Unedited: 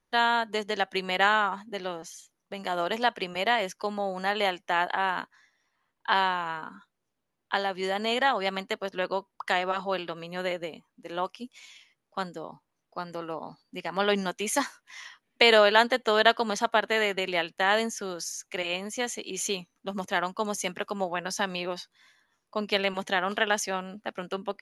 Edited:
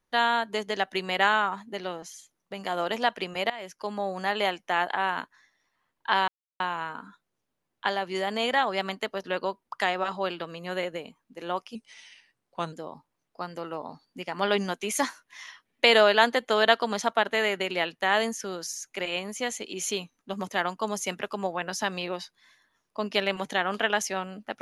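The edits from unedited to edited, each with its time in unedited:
0:03.50–0:03.99: fade in, from −19 dB
0:06.28: splice in silence 0.32 s
0:11.43–0:12.30: play speed 89%

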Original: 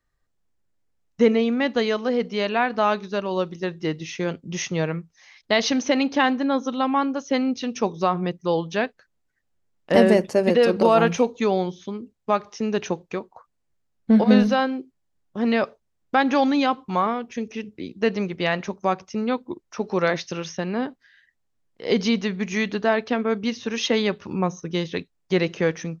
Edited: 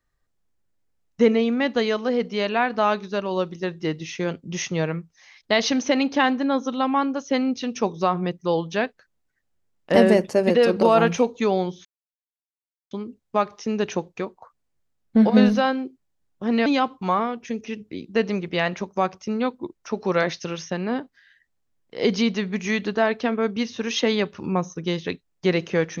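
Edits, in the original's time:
0:11.85: splice in silence 1.06 s
0:15.60–0:16.53: remove

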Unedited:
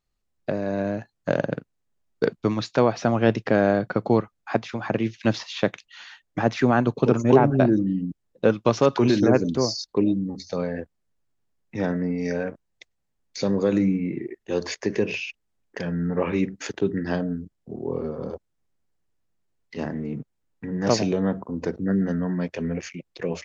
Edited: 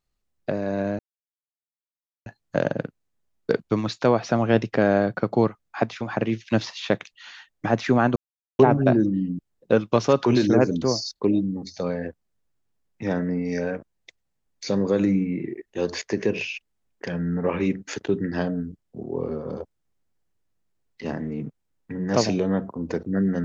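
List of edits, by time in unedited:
0:00.99: splice in silence 1.27 s
0:06.89–0:07.32: silence

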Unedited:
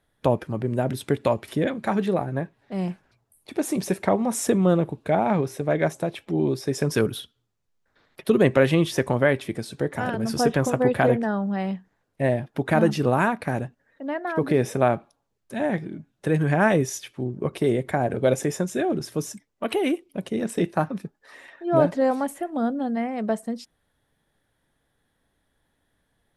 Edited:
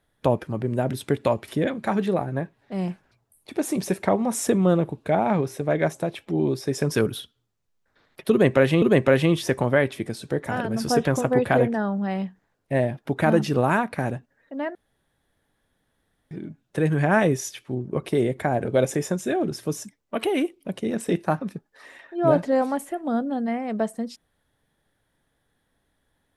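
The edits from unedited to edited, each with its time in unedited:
0:08.31–0:08.82: repeat, 2 plays
0:14.24–0:15.80: fill with room tone

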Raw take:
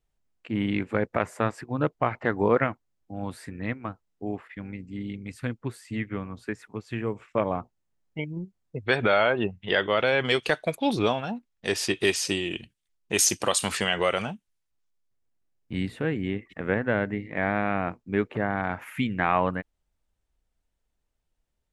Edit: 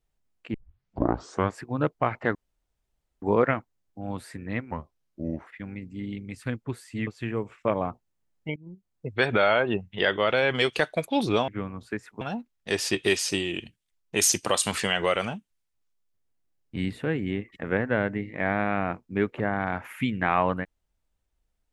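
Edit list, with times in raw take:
0:00.54: tape start 1.03 s
0:02.35: splice in room tone 0.87 s
0:03.84–0:04.44: play speed 79%
0:06.04–0:06.77: move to 0:11.18
0:08.26–0:08.77: fade in, from −19.5 dB

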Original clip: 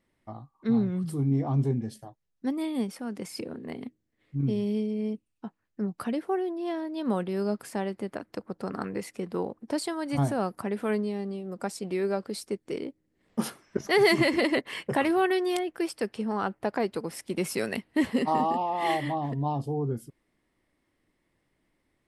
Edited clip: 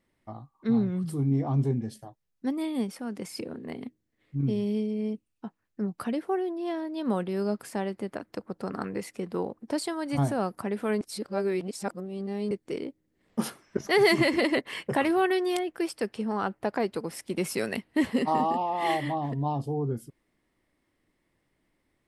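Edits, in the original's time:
0:11.01–0:12.51: reverse

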